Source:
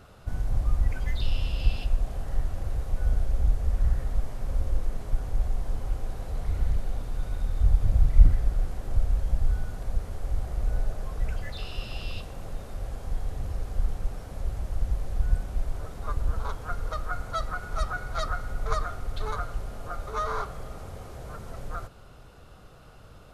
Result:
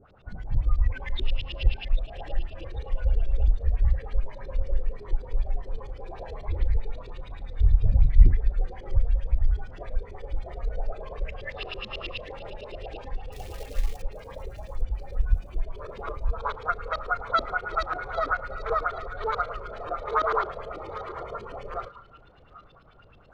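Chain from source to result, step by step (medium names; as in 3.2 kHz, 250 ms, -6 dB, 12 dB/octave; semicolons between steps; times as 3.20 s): in parallel at -1 dB: compression 6:1, threshold -30 dBFS, peak gain reduction 20.5 dB; on the sum: wow and flutter 23 cents; LFO low-pass saw up 9.2 Hz 310–4200 Hz; 13.32–14.02 s: companded quantiser 6-bit; on a send: thinning echo 794 ms, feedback 45%, high-pass 420 Hz, level -14 dB; on the sum: spectral noise reduction 12 dB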